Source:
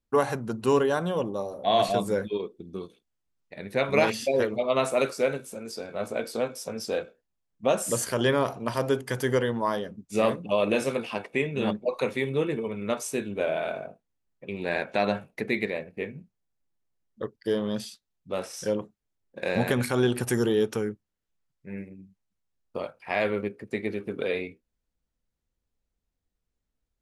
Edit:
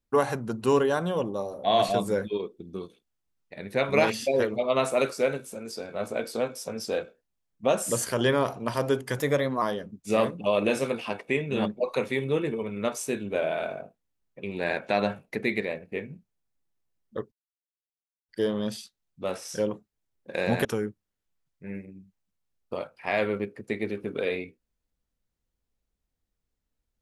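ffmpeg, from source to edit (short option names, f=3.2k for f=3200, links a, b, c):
-filter_complex "[0:a]asplit=5[a][b][c][d][e];[a]atrim=end=9.194[f];[b]atrim=start=9.19:end=9.67,asetpts=PTS-STARTPTS,asetrate=49392,aresample=44100[g];[c]atrim=start=9.666:end=17.37,asetpts=PTS-STARTPTS,afade=t=out:st=7.7:d=0.004:c=hsin,apad=pad_dur=0.97[h];[d]atrim=start=17.37:end=19.732,asetpts=PTS-STARTPTS,afade=t=in:d=0.004:c=hsin[i];[e]atrim=start=20.678[j];[f][g]acrossfade=d=0.004:c1=hsin:c2=hsin[k];[h][i]concat=n=2:v=0:a=1[l];[k][l]acrossfade=d=0.004:c1=hsin:c2=hsin[m];[m][j]acrossfade=d=0.004:c1=hsin:c2=hsin"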